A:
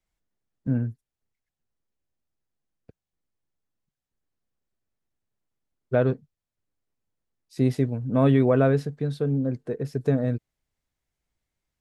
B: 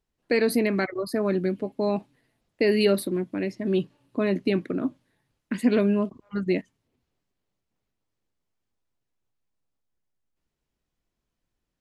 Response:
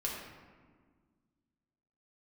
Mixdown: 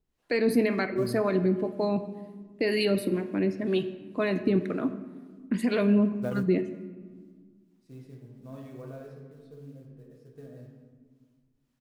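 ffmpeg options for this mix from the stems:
-filter_complex "[0:a]acrusher=bits=6:mode=log:mix=0:aa=0.000001,adelay=300,volume=-13.5dB,asplit=2[link_01][link_02];[link_02]volume=-13.5dB[link_03];[1:a]deesser=0.45,alimiter=limit=-16.5dB:level=0:latency=1:release=46,acrossover=split=500[link_04][link_05];[link_04]aeval=exprs='val(0)*(1-0.7/2+0.7/2*cos(2*PI*2*n/s))':channel_layout=same[link_06];[link_05]aeval=exprs='val(0)*(1-0.7/2-0.7/2*cos(2*PI*2*n/s))':channel_layout=same[link_07];[link_06][link_07]amix=inputs=2:normalize=0,volume=1.5dB,asplit=3[link_08][link_09][link_10];[link_09]volume=-9.5dB[link_11];[link_10]apad=whole_len=533886[link_12];[link_01][link_12]sidechaingate=range=-33dB:threshold=-54dB:ratio=16:detection=peak[link_13];[2:a]atrim=start_sample=2205[link_14];[link_03][link_11]amix=inputs=2:normalize=0[link_15];[link_15][link_14]afir=irnorm=-1:irlink=0[link_16];[link_13][link_08][link_16]amix=inputs=3:normalize=0"

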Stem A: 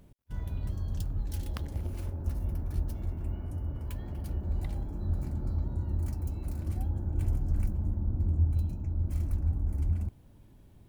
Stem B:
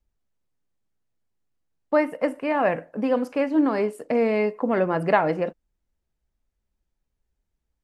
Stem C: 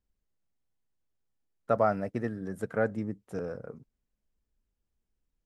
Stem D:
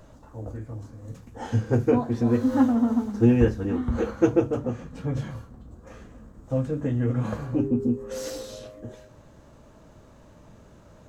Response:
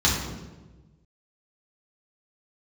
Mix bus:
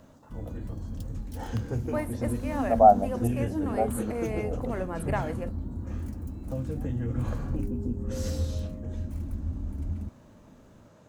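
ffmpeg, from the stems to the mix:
-filter_complex "[0:a]equalizer=frequency=240:width_type=o:width=0.65:gain=12.5,volume=-4.5dB[link_01];[1:a]aexciter=amount=9.8:drive=7.5:freq=7000,volume=-11.5dB,asplit=2[link_02][link_03];[2:a]lowpass=frequency=750:width_type=q:width=8.7,adelay=1000,volume=2dB[link_04];[3:a]highpass=110,acrossover=split=170|3000[link_05][link_06][link_07];[link_06]acompressor=threshold=-31dB:ratio=6[link_08];[link_05][link_08][link_07]amix=inputs=3:normalize=0,volume=-3.5dB[link_09];[link_03]apad=whole_len=284616[link_10];[link_04][link_10]sidechaincompress=threshold=-40dB:ratio=8:attack=16:release=326[link_11];[link_01][link_02][link_11][link_09]amix=inputs=4:normalize=0"

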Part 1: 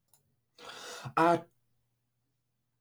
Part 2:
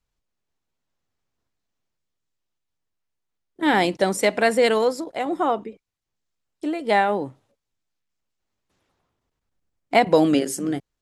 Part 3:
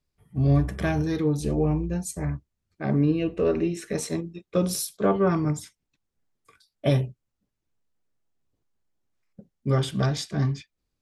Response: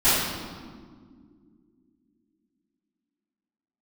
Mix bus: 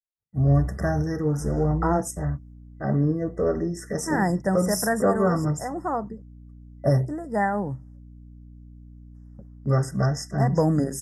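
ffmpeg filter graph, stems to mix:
-filter_complex "[0:a]lowpass=frequency=1200:poles=1,adelay=650,volume=2.5dB[link_01];[1:a]lowshelf=frequency=220:width_type=q:width=1.5:gain=11,aeval=exprs='val(0)+0.0112*(sin(2*PI*60*n/s)+sin(2*PI*2*60*n/s)/2+sin(2*PI*3*60*n/s)/3+sin(2*PI*4*60*n/s)/4+sin(2*PI*5*60*n/s)/5)':channel_layout=same,adelay=450,volume=-4.5dB[link_02];[2:a]agate=range=-40dB:threshold=-51dB:ratio=16:detection=peak,aecho=1:1:1.5:0.33,volume=0.5dB,asplit=2[link_03][link_04];[link_04]apad=whole_len=505738[link_05];[link_02][link_05]sidechaincompress=threshold=-23dB:ratio=8:attack=9.7:release=170[link_06];[link_01][link_06][link_03]amix=inputs=3:normalize=0,afftfilt=real='re*(1-between(b*sr/4096,2000,4900))':imag='im*(1-between(b*sr/4096,2000,4900))':win_size=4096:overlap=0.75"

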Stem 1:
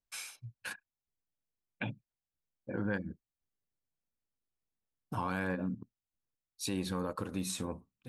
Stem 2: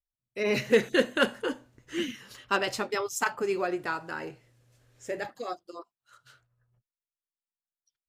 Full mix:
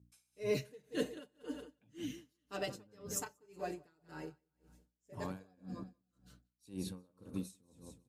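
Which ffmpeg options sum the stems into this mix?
ffmpeg -i stem1.wav -i stem2.wav -filter_complex "[0:a]aeval=exprs='val(0)+0.00126*(sin(2*PI*60*n/s)+sin(2*PI*2*60*n/s)/2+sin(2*PI*3*60*n/s)/3+sin(2*PI*4*60*n/s)/4+sin(2*PI*5*60*n/s)/5)':channel_layout=same,volume=-0.5dB,asplit=2[link_01][link_02];[link_02]volume=-11dB[link_03];[1:a]aecho=1:1:6.7:0.86,volume=-4dB,asplit=2[link_04][link_05];[link_05]volume=-12dB[link_06];[link_03][link_06]amix=inputs=2:normalize=0,aecho=0:1:184|368|552|736|920:1|0.39|0.152|0.0593|0.0231[link_07];[link_01][link_04][link_07]amix=inputs=3:normalize=0,highpass=81,equalizer=frequency=1600:width=0.48:gain=-13,aeval=exprs='val(0)*pow(10,-31*(0.5-0.5*cos(2*PI*1.9*n/s))/20)':channel_layout=same" out.wav

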